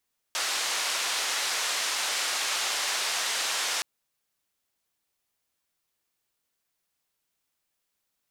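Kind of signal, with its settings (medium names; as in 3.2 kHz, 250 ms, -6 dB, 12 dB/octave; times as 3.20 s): noise band 670–6500 Hz, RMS -29 dBFS 3.47 s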